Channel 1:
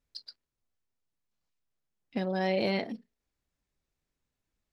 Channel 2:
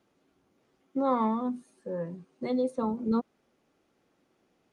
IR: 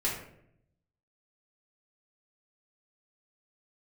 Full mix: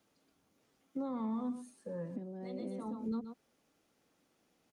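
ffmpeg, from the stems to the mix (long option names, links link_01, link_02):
-filter_complex "[0:a]bandpass=frequency=270:width_type=q:width=2.7:csg=0,volume=-5.5dB,asplit=2[link_01][link_02];[1:a]highshelf=frequency=4100:gain=10.5,bandreject=frequency=370:width=12,volume=-4.5dB,asplit=2[link_03][link_04];[link_04]volume=-15.5dB[link_05];[link_02]apad=whole_len=208272[link_06];[link_03][link_06]sidechaincompress=threshold=-55dB:ratio=8:attack=30:release=135[link_07];[link_05]aecho=0:1:126:1[link_08];[link_01][link_07][link_08]amix=inputs=3:normalize=0,acrossover=split=330[link_09][link_10];[link_10]acompressor=threshold=-42dB:ratio=6[link_11];[link_09][link_11]amix=inputs=2:normalize=0,alimiter=level_in=6.5dB:limit=-24dB:level=0:latency=1:release=30,volume=-6.5dB"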